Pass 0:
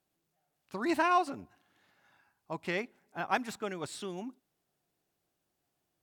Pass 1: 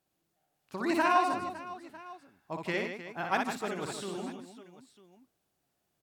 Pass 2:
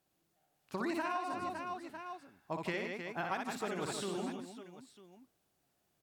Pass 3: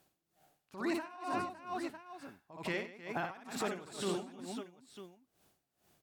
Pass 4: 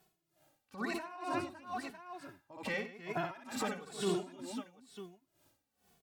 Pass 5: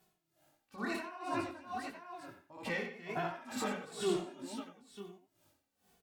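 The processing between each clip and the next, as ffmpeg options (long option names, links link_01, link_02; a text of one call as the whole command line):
ffmpeg -i in.wav -af "aecho=1:1:60|156|309.6|555.4|948.6:0.631|0.398|0.251|0.158|0.1" out.wav
ffmpeg -i in.wav -af "acompressor=threshold=-34dB:ratio=12,volume=1dB" out.wav
ffmpeg -i in.wav -af "alimiter=level_in=10.5dB:limit=-24dB:level=0:latency=1:release=39,volume=-10.5dB,aeval=exprs='val(0)*pow(10,-19*(0.5-0.5*cos(2*PI*2.2*n/s))/20)':channel_layout=same,volume=9.5dB" out.wav
ffmpeg -i in.wav -filter_complex "[0:a]asplit=2[link_01][link_02];[link_02]adelay=2.3,afreqshift=-1[link_03];[link_01][link_03]amix=inputs=2:normalize=1,volume=3.5dB" out.wav
ffmpeg -i in.wav -filter_complex "[0:a]flanger=delay=17:depth=7.8:speed=1.5,asplit=2[link_01][link_02];[link_02]adelay=90,highpass=300,lowpass=3400,asoftclip=type=hard:threshold=-33.5dB,volume=-9dB[link_03];[link_01][link_03]amix=inputs=2:normalize=0,volume=2.5dB" out.wav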